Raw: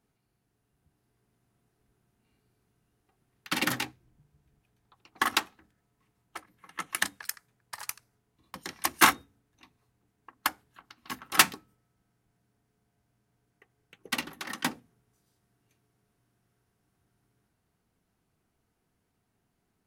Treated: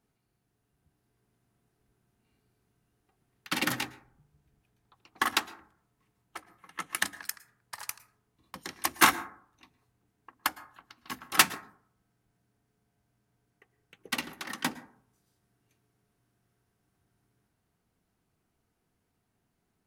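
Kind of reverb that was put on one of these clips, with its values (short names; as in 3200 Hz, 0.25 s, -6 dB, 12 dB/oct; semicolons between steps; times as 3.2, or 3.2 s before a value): plate-style reverb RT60 0.55 s, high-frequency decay 0.3×, pre-delay 0.1 s, DRR 17.5 dB; gain -1 dB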